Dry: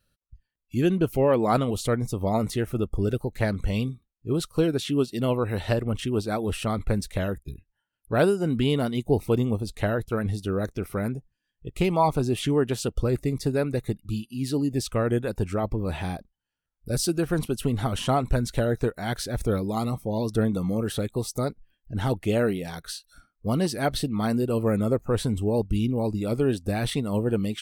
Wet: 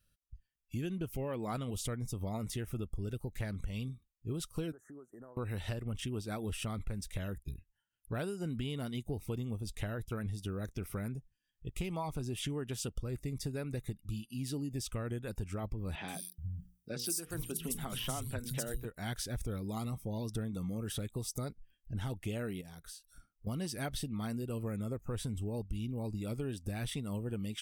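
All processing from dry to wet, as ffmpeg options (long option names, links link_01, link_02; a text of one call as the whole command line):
ffmpeg -i in.wav -filter_complex "[0:a]asettb=1/sr,asplit=3[link_01][link_02][link_03];[link_01]atrim=end=4.724[link_04];[link_02]atrim=start=4.72:end=5.37,asetpts=PTS-STARTPTS,afade=type=in:duration=0.004:curve=qsin,afade=type=out:start_time=0.646:duration=0.004:curve=qsin,acrossover=split=350 2800:gain=0.126 1 0.112[link_05][link_06][link_07];[link_05][link_06][link_07]amix=inputs=3:normalize=0,acompressor=threshold=-39dB:ratio=12:attack=3.2:release=140:knee=1:detection=peak,asuperstop=centerf=3400:order=20:qfactor=0.77[link_08];[link_03]atrim=start=5.366[link_09];[link_04][link_08]acrossfade=duration=0.004:curve1=hsin:curve2=qsin[link_10];[link_10][link_09]acrossfade=duration=0.004:curve1=qsin:curve2=hsin,asettb=1/sr,asplit=3[link_11][link_12][link_13];[link_11]atrim=end=15.954[link_14];[link_12]atrim=start=15.95:end=18.85,asetpts=PTS-STARTPTS,afade=type=in:duration=0.004:curve=qsin,afade=type=out:start_time=2.896:duration=0.004:curve=qsin,aemphasis=mode=production:type=50kf,bandreject=frequency=60:width_type=h:width=6,bandreject=frequency=120:width_type=h:width=6,bandreject=frequency=180:width_type=h:width=6,bandreject=frequency=240:width_type=h:width=6,bandreject=frequency=300:width_type=h:width=6,bandreject=frequency=360:width_type=h:width=6,bandreject=frequency=420:width_type=h:width=6,bandreject=frequency=480:width_type=h:width=6,acrossover=split=160|4000[link_15][link_16][link_17];[link_17]adelay=130[link_18];[link_15]adelay=430[link_19];[link_19][link_16][link_18]amix=inputs=3:normalize=0,atrim=end_sample=127890[link_20];[link_13]atrim=start=18.846[link_21];[link_14][link_20]acrossfade=duration=0.004:curve1=hsin:curve2=qsin[link_22];[link_22][link_21]acrossfade=duration=0.004:curve1=qsin:curve2=hsin,asettb=1/sr,asplit=3[link_23][link_24][link_25];[link_23]atrim=end=22.614[link_26];[link_24]atrim=start=22.61:end=23.47,asetpts=PTS-STARTPTS,afade=type=in:duration=0.004:curve=qsin,afade=type=out:start_time=0.856:duration=0.004:curve=qsin,equalizer=frequency=2600:width=0.61:gain=-6,acompressor=threshold=-45dB:ratio=2.5:attack=3.2:release=140:knee=1:detection=peak[link_27];[link_25]atrim=start=23.466[link_28];[link_26][link_27]acrossfade=duration=0.004:curve1=hsin:curve2=qsin[link_29];[link_29][link_28]acrossfade=duration=0.004:curve1=qsin:curve2=hsin,equalizer=frequency=590:width=0.37:gain=-9,bandreject=frequency=4200:width=7.6,acompressor=threshold=-33dB:ratio=6,volume=-1.5dB" out.wav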